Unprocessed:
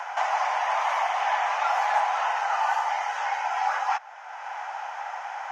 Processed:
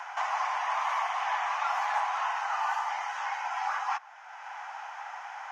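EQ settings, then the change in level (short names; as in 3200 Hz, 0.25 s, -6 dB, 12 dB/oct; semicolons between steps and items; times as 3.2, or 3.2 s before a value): HPF 830 Hz 12 dB/oct; dynamic EQ 1100 Hz, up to +7 dB, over -45 dBFS, Q 6.1; -4.5 dB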